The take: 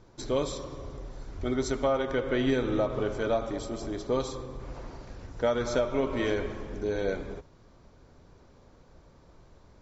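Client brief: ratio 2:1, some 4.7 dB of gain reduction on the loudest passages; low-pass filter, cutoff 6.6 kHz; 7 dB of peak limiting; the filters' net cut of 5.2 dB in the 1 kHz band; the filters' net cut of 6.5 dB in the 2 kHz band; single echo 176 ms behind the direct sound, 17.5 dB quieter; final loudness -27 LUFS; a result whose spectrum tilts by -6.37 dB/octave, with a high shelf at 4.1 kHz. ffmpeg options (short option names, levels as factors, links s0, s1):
-af "lowpass=6600,equalizer=f=1000:t=o:g=-5.5,equalizer=f=2000:t=o:g=-5.5,highshelf=f=4100:g=-4.5,acompressor=threshold=0.0251:ratio=2,alimiter=level_in=1.33:limit=0.0631:level=0:latency=1,volume=0.75,aecho=1:1:176:0.133,volume=3.35"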